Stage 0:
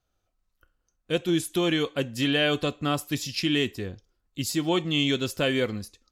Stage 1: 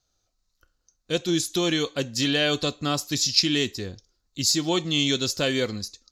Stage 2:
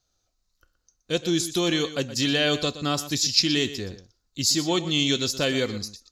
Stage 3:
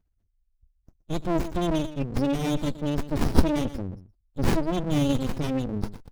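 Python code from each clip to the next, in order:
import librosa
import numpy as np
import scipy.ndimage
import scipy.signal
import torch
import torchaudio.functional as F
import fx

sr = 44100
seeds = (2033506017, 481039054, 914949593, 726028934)

y1 = fx.band_shelf(x, sr, hz=5200.0, db=12.5, octaves=1.1)
y2 = y1 + 10.0 ** (-14.0 / 20.0) * np.pad(y1, (int(121 * sr / 1000.0), 0))[:len(y1)]
y3 = fx.brickwall_bandstop(y2, sr, low_hz=370.0, high_hz=2300.0)
y3 = fx.spec_gate(y3, sr, threshold_db=-10, keep='strong')
y3 = fx.running_max(y3, sr, window=65)
y3 = y3 * 10.0 ** (6.5 / 20.0)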